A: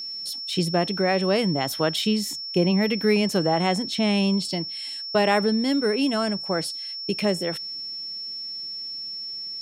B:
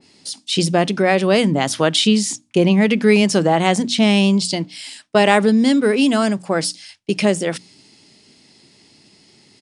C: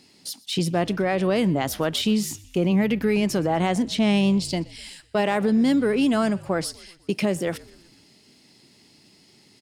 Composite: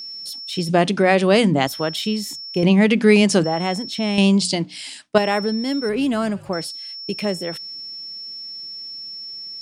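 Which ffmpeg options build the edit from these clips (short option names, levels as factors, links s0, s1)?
-filter_complex "[1:a]asplit=3[s0][s1][s2];[0:a]asplit=5[s3][s4][s5][s6][s7];[s3]atrim=end=0.692[s8];[s0]atrim=start=0.688:end=1.672[s9];[s4]atrim=start=1.668:end=2.632[s10];[s1]atrim=start=2.628:end=3.442[s11];[s5]atrim=start=3.438:end=4.182[s12];[s2]atrim=start=4.178:end=5.182[s13];[s6]atrim=start=5.178:end=5.892[s14];[2:a]atrim=start=5.888:end=6.532[s15];[s7]atrim=start=6.528[s16];[s8][s9]acrossfade=d=0.004:c1=hsin:c2=hsin[s17];[s17][s10]acrossfade=d=0.004:c1=hsin:c2=hsin[s18];[s18][s11]acrossfade=d=0.004:c1=hsin:c2=hsin[s19];[s19][s12]acrossfade=d=0.004:c1=hsin:c2=hsin[s20];[s20][s13]acrossfade=d=0.004:c1=hsin:c2=hsin[s21];[s21][s14]acrossfade=d=0.004:c1=hsin:c2=hsin[s22];[s22][s15]acrossfade=d=0.004:c1=hsin:c2=hsin[s23];[s23][s16]acrossfade=d=0.004:c1=hsin:c2=hsin"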